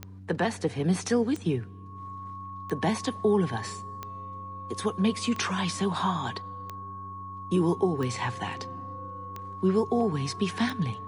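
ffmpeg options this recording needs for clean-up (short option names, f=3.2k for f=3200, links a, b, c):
-af "adeclick=t=4,bandreject=f=95.5:t=h:w=4,bandreject=f=191:t=h:w=4,bandreject=f=286.5:t=h:w=4,bandreject=f=1.1k:w=30"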